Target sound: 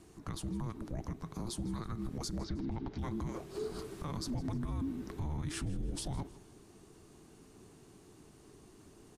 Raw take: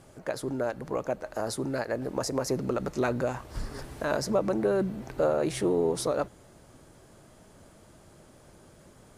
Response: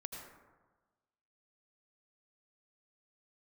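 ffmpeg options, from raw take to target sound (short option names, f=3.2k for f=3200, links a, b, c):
-filter_complex "[0:a]afreqshift=-460,alimiter=level_in=2dB:limit=-24dB:level=0:latency=1:release=58,volume=-2dB,asettb=1/sr,asplit=3[a][b][c];[a]atrim=end=2.394[d];[b]atrim=start=2.39:end=2.99,asetpts=PTS-STARTPTS,afade=t=in:d=0.004:c=qsin,afade=t=out:st=0.596:d=0.004:c=qsin,lowpass=f=4.2k:w=0.5412,lowpass=f=4.2k:w=1.3066[e];[c]atrim=start=2.986[f];[d][e]acrossfade=d=0.004:c1=hsin:c2=qsin[g];[g][f]acrossfade=d=0.004:c1=qsin:c2=hsin,aecho=1:1:159|318|477:0.112|0.0415|0.0154,volume=-3.5dB"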